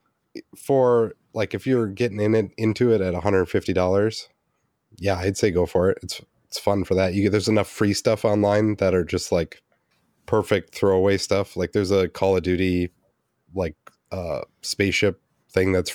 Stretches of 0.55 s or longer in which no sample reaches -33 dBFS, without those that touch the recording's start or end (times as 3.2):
4.23–4.98
9.53–10.28
12.87–13.56